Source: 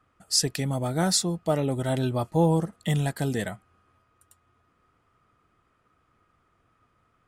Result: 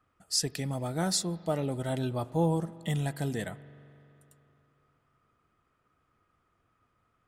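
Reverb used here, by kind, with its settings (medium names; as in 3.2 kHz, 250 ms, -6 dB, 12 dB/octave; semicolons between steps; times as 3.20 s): spring tank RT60 3.1 s, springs 42 ms, chirp 60 ms, DRR 17.5 dB; trim -5.5 dB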